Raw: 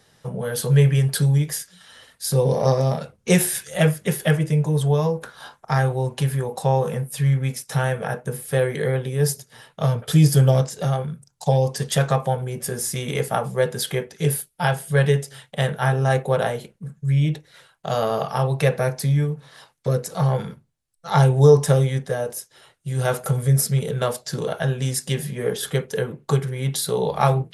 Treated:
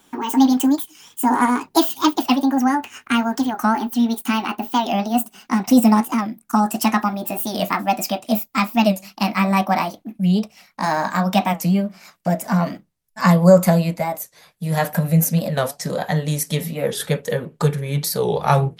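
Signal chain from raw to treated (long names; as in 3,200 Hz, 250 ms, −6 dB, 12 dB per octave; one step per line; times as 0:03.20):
gliding playback speed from 191% → 102%
wow of a warped record 45 rpm, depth 160 cents
level +2 dB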